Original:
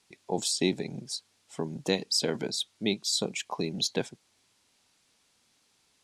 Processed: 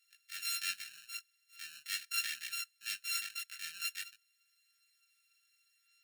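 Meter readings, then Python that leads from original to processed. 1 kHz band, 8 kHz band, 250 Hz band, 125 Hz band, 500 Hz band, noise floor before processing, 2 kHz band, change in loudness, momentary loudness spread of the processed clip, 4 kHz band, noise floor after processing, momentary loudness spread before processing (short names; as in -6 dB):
-12.0 dB, -7.0 dB, under -40 dB, under -40 dB, under -40 dB, -70 dBFS, -0.5 dB, -8.0 dB, 12 LU, -9.0 dB, -76 dBFS, 11 LU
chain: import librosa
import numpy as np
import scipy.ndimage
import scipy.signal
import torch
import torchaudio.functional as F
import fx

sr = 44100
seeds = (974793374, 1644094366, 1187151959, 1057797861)

y = np.r_[np.sort(x[:len(x) // 32 * 32].reshape(-1, 32), axis=1).ravel(), x[len(x) // 32 * 32:]]
y = fx.transient(y, sr, attack_db=-7, sustain_db=-2)
y = scipy.signal.sosfilt(scipy.signal.ellip(4, 1.0, 40, 1700.0, 'highpass', fs=sr, output='sos'), y)
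y = fx.chorus_voices(y, sr, voices=2, hz=0.42, base_ms=18, depth_ms=2.3, mix_pct=45)
y = y * 10.0 ** (2.0 / 20.0)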